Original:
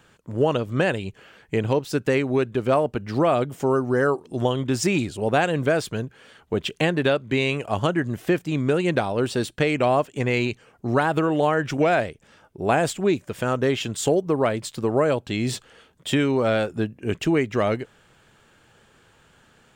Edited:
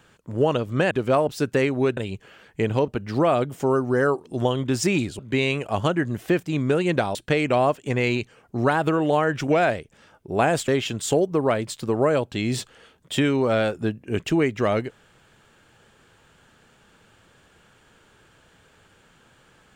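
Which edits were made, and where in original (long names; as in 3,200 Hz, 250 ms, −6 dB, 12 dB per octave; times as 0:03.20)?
0:00.91–0:01.82: swap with 0:02.50–0:02.88
0:05.19–0:07.18: remove
0:09.14–0:09.45: remove
0:12.98–0:13.63: remove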